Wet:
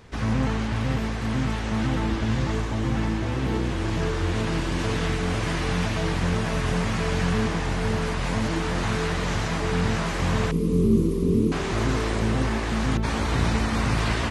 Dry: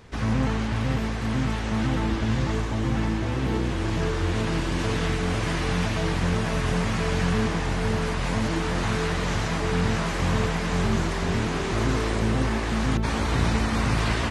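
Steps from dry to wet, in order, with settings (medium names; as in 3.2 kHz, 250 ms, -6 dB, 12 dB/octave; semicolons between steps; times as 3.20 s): 10.51–11.52 s: FFT filter 110 Hz 0 dB, 250 Hz +9 dB, 460 Hz +6 dB, 720 Hz -28 dB, 1.1 kHz -12 dB, 1.6 kHz -28 dB, 2.4 kHz -16 dB, 7.6 kHz -10 dB, 11 kHz +5 dB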